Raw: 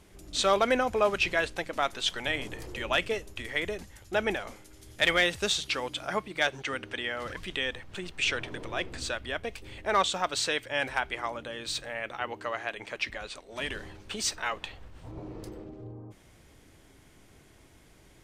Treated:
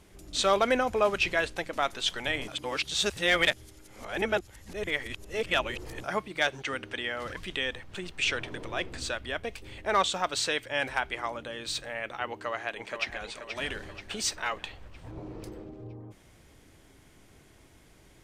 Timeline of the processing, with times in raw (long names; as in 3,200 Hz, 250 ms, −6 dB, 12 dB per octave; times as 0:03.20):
0:02.48–0:06.04: reverse
0:12.28–0:13.24: delay throw 480 ms, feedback 50%, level −8 dB